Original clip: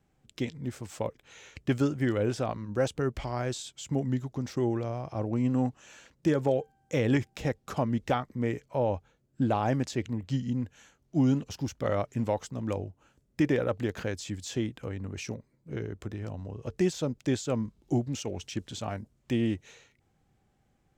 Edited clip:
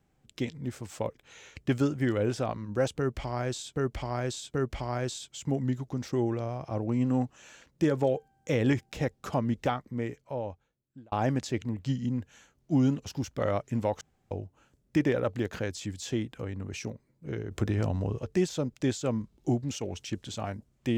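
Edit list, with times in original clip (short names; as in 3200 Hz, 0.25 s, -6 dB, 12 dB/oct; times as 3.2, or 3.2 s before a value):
2.98–3.76 loop, 3 plays
7.97–9.56 fade out
12.45–12.75 room tone
15.95–16.63 gain +9 dB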